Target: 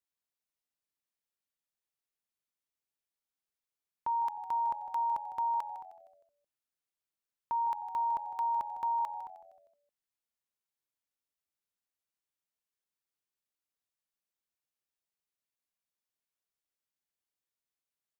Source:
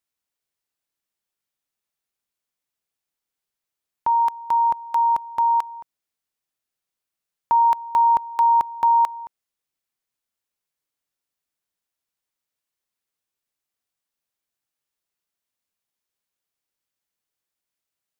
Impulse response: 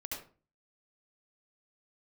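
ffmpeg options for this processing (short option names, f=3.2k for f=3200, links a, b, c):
-filter_complex "[0:a]alimiter=limit=-18.5dB:level=0:latency=1:release=53,asplit=2[a][b];[b]asplit=4[c][d][e][f];[c]adelay=155,afreqshift=-88,volume=-13.5dB[g];[d]adelay=310,afreqshift=-176,volume=-21dB[h];[e]adelay=465,afreqshift=-264,volume=-28.6dB[i];[f]adelay=620,afreqshift=-352,volume=-36.1dB[j];[g][h][i][j]amix=inputs=4:normalize=0[k];[a][k]amix=inputs=2:normalize=0,volume=-9dB"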